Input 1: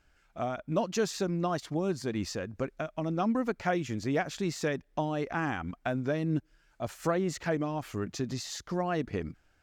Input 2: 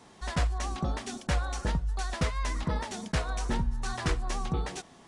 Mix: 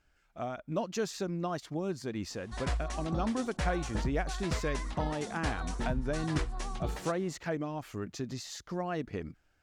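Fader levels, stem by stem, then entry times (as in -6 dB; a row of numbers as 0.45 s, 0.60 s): -4.0 dB, -5.0 dB; 0.00 s, 2.30 s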